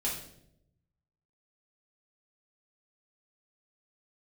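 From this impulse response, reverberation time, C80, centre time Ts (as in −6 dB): 0.75 s, 8.5 dB, 38 ms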